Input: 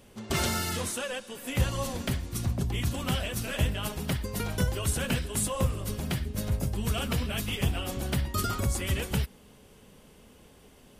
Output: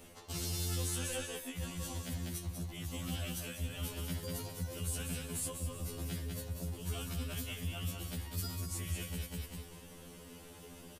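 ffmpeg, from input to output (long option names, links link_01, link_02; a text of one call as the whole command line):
ffmpeg -i in.wav -filter_complex "[0:a]acrossover=split=350|3000[link_01][link_02][link_03];[link_02]acompressor=threshold=-39dB:ratio=6[link_04];[link_01][link_04][link_03]amix=inputs=3:normalize=0,aecho=1:1:197|394|591:0.531|0.117|0.0257,areverse,acompressor=threshold=-39dB:ratio=5,areverse,highshelf=frequency=6800:gain=5,afftfilt=real='re*2*eq(mod(b,4),0)':imag='im*2*eq(mod(b,4),0)':win_size=2048:overlap=0.75,volume=3.5dB" out.wav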